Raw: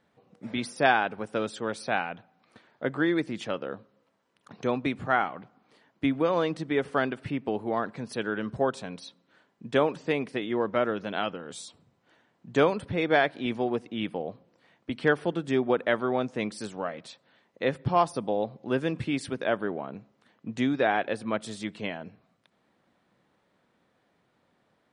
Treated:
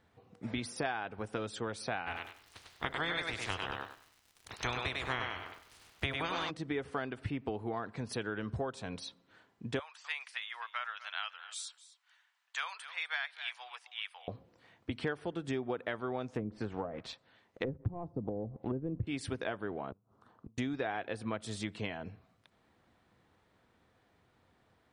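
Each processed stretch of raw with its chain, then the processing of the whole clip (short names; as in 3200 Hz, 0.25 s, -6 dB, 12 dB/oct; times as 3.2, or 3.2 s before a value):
2.06–6.49 spectral limiter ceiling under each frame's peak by 26 dB + crackle 110/s -48 dBFS + thinning echo 99 ms, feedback 22%, high-pass 310 Hz, level -3 dB
9.79–14.28 Bessel high-pass 1600 Hz, order 6 + echo 0.254 s -17 dB
16.34–19.07 sample leveller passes 1 + treble ducked by the level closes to 340 Hz, closed at -22.5 dBFS
19.91–20.58 resonant high shelf 1600 Hz -8.5 dB, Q 3 + flutter echo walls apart 7.8 m, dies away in 0.22 s + flipped gate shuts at -35 dBFS, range -30 dB
whole clip: resonant low shelf 120 Hz +8.5 dB, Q 1.5; compressor 5:1, threshold -33 dBFS; notch 570 Hz, Q 12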